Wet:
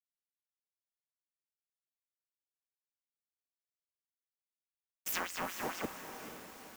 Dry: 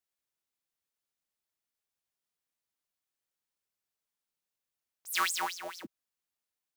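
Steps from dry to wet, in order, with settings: cycle switcher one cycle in 3, inverted; gate with hold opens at -42 dBFS; fifteen-band graphic EQ 250 Hz +6 dB, 4 kHz -10 dB, 10 kHz -11 dB; compression 16:1, threshold -49 dBFS, peak gain reduction 24 dB; on a send: echo that smears into a reverb 474 ms, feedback 49%, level -8.5 dB; on the sum: companded quantiser 6-bit; trim +14.5 dB

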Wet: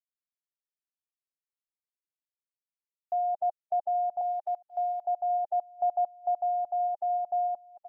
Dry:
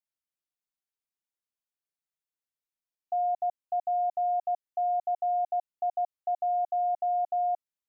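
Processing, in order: bit crusher 11-bit; distance through air 410 m; delay 826 ms -15 dB; reverb removal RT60 0.64 s; gain riding 0.5 s; 4.21–5.05 s: tilt EQ +5 dB/octave; tape noise reduction on one side only encoder only; trim +2.5 dB

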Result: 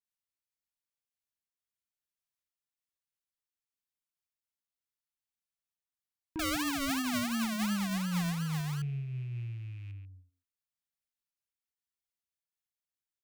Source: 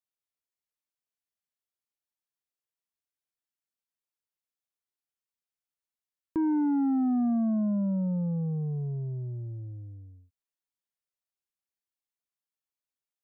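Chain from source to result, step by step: rattle on loud lows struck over -40 dBFS, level -44 dBFS; bass shelf 340 Hz +4 dB; speakerphone echo 140 ms, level -8 dB; 6.39–8.82 s: decimation with a swept rate 41×, swing 60% 2.8 Hz; peaking EQ 440 Hz -14 dB 1.6 oct; random flutter of the level, depth 55%

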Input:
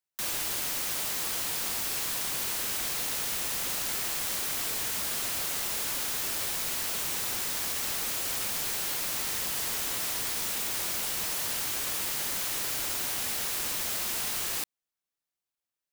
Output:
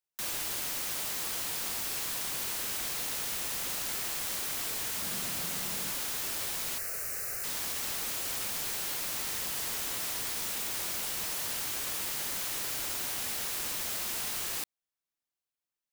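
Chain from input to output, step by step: 5.02–5.91 s: peaking EQ 180 Hz +12 dB 0.74 oct; 6.78–7.44 s: static phaser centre 930 Hz, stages 6; trim -3 dB

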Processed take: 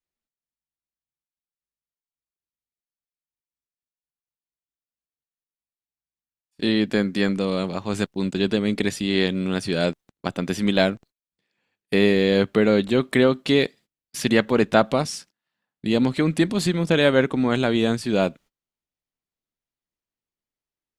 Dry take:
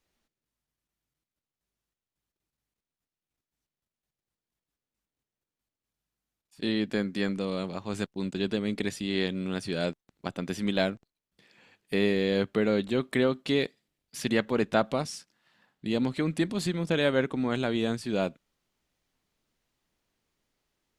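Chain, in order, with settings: gate -53 dBFS, range -23 dB; trim +7.5 dB

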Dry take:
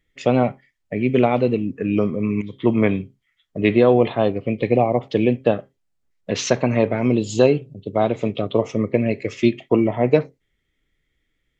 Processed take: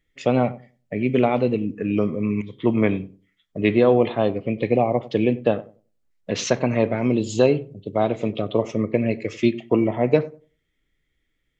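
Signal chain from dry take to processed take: filtered feedback delay 95 ms, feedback 23%, low-pass 930 Hz, level -17 dB; on a send at -22 dB: reverberation RT60 0.30 s, pre-delay 3 ms; on the sum: trim -2 dB

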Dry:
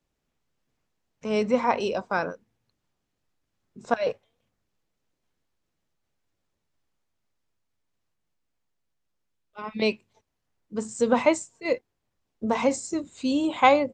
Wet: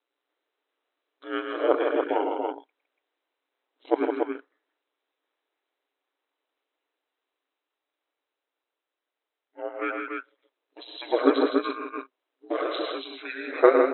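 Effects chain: FFT band-pass 590–7200 Hz; pitch shift -10 st; ring modulator 62 Hz; loudspeakers at several distances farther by 37 m -7 dB, 55 m -6 dB, 98 m -4 dB; trim +4.5 dB

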